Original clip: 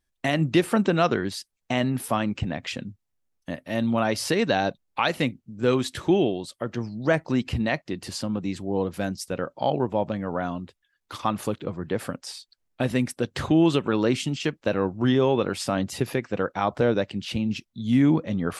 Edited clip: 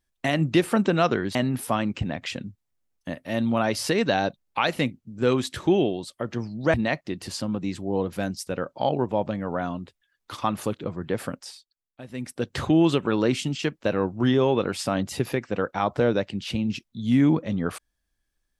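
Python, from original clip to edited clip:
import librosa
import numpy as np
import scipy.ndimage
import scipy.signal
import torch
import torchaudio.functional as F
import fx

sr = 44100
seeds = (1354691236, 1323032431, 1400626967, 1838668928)

y = fx.edit(x, sr, fx.cut(start_s=1.35, length_s=0.41),
    fx.cut(start_s=7.15, length_s=0.4),
    fx.fade_down_up(start_s=12.14, length_s=1.16, db=-16.5, fade_s=0.39), tone=tone)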